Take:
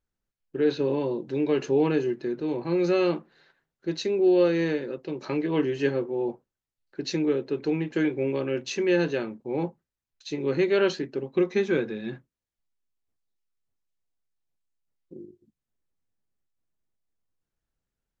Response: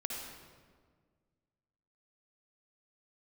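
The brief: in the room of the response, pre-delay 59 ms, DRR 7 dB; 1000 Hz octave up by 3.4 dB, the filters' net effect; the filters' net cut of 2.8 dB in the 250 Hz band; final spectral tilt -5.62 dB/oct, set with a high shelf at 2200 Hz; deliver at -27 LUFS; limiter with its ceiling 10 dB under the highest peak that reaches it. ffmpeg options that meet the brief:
-filter_complex "[0:a]equalizer=f=250:t=o:g=-5,equalizer=f=1k:t=o:g=6,highshelf=f=2.2k:g=-6.5,alimiter=limit=-22.5dB:level=0:latency=1,asplit=2[a][b];[1:a]atrim=start_sample=2205,adelay=59[c];[b][c]afir=irnorm=-1:irlink=0,volume=-8.5dB[d];[a][d]amix=inputs=2:normalize=0,volume=4.5dB"

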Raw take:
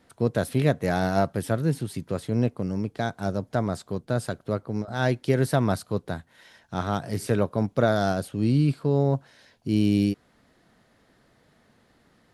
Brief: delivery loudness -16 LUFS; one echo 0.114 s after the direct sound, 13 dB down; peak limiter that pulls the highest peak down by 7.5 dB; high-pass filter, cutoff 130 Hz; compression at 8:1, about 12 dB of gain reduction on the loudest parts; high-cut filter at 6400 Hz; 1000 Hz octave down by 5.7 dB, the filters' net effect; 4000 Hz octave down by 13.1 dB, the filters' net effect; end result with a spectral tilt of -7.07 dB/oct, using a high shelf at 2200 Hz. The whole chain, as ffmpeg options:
-af "highpass=130,lowpass=6.4k,equalizer=f=1k:t=o:g=-7.5,highshelf=f=2.2k:g=-7.5,equalizer=f=4k:t=o:g=-8.5,acompressor=threshold=-31dB:ratio=8,alimiter=level_in=4dB:limit=-24dB:level=0:latency=1,volume=-4dB,aecho=1:1:114:0.224,volume=23.5dB"

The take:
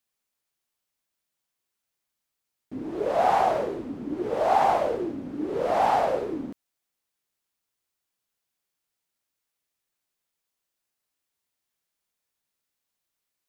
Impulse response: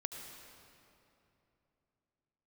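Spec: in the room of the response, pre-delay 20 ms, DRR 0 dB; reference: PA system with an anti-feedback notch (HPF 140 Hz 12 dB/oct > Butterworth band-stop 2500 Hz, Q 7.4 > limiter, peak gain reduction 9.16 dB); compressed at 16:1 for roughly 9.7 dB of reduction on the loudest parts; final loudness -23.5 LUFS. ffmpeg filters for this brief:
-filter_complex "[0:a]acompressor=threshold=-26dB:ratio=16,asplit=2[a][b];[1:a]atrim=start_sample=2205,adelay=20[c];[b][c]afir=irnorm=-1:irlink=0,volume=0.5dB[d];[a][d]amix=inputs=2:normalize=0,highpass=140,asuperstop=centerf=2500:order=8:qfactor=7.4,volume=11dB,alimiter=limit=-14.5dB:level=0:latency=1"

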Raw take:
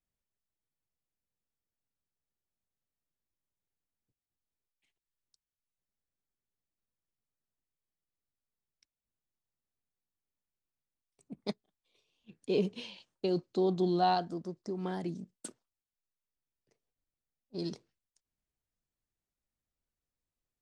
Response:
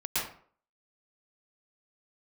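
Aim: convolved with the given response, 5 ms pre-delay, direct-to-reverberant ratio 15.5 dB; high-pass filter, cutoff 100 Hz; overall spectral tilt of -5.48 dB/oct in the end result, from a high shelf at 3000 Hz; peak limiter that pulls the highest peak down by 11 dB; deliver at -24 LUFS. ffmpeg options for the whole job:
-filter_complex "[0:a]highpass=100,highshelf=f=3k:g=7.5,alimiter=level_in=2.5dB:limit=-24dB:level=0:latency=1,volume=-2.5dB,asplit=2[a][b];[1:a]atrim=start_sample=2205,adelay=5[c];[b][c]afir=irnorm=-1:irlink=0,volume=-23.5dB[d];[a][d]amix=inputs=2:normalize=0,volume=14.5dB"

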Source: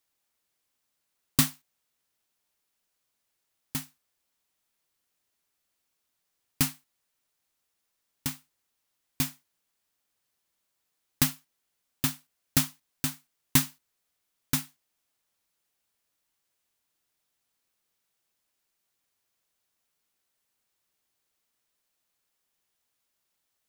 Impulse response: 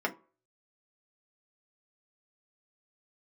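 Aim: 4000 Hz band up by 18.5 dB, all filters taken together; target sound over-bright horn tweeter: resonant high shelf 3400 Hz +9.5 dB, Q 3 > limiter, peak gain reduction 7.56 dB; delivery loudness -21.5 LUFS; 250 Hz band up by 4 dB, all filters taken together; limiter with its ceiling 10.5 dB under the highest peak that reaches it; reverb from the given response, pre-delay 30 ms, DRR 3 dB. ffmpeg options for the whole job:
-filter_complex "[0:a]equalizer=f=250:t=o:g=4.5,equalizer=f=4k:t=o:g=7,alimiter=limit=-14dB:level=0:latency=1,asplit=2[a][b];[1:a]atrim=start_sample=2205,adelay=30[c];[b][c]afir=irnorm=-1:irlink=0,volume=-11dB[d];[a][d]amix=inputs=2:normalize=0,highshelf=f=3.4k:t=q:w=3:g=9.5,volume=5dB,alimiter=limit=-6dB:level=0:latency=1"

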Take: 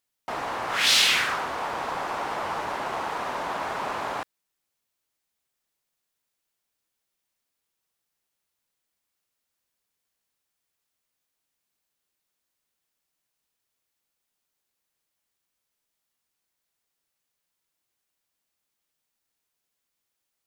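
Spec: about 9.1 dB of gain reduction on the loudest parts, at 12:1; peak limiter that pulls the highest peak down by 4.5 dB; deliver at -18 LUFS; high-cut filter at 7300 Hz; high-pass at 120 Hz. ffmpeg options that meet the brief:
-af "highpass=120,lowpass=7.3k,acompressor=threshold=-25dB:ratio=12,volume=13dB,alimiter=limit=-9dB:level=0:latency=1"

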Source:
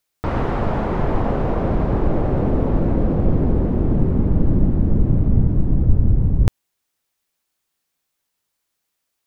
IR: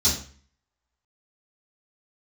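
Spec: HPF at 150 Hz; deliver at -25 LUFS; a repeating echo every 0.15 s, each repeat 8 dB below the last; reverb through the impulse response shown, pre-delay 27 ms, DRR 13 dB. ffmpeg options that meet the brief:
-filter_complex "[0:a]highpass=150,aecho=1:1:150|300|450|600|750:0.398|0.159|0.0637|0.0255|0.0102,asplit=2[a][b];[1:a]atrim=start_sample=2205,adelay=27[c];[b][c]afir=irnorm=-1:irlink=0,volume=-24.5dB[d];[a][d]amix=inputs=2:normalize=0,volume=-3dB"

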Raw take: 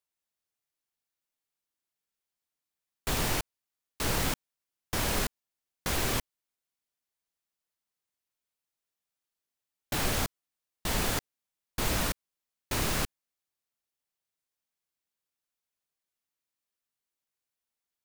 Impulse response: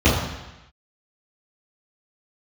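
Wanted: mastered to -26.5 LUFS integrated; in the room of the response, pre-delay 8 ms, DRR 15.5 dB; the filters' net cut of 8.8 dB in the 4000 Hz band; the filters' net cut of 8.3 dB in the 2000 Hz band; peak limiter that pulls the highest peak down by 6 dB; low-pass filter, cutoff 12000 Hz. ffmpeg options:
-filter_complex "[0:a]lowpass=12k,equalizer=f=2k:t=o:g=-8.5,equalizer=f=4k:t=o:g=-9,alimiter=limit=-23.5dB:level=0:latency=1,asplit=2[a][b];[1:a]atrim=start_sample=2205,adelay=8[c];[b][c]afir=irnorm=-1:irlink=0,volume=-37.5dB[d];[a][d]amix=inputs=2:normalize=0,volume=10dB"

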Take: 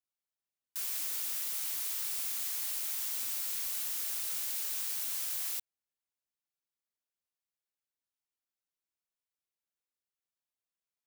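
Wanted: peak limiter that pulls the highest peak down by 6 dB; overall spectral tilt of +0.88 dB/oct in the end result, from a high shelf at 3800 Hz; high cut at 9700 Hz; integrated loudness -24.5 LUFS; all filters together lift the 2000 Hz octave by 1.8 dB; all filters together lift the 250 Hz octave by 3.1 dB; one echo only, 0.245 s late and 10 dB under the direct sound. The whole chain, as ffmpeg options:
-af "lowpass=9.7k,equalizer=f=250:t=o:g=4,equalizer=f=2k:t=o:g=3.5,highshelf=f=3.8k:g=-4.5,alimiter=level_in=14dB:limit=-24dB:level=0:latency=1,volume=-14dB,aecho=1:1:245:0.316,volume=20.5dB"

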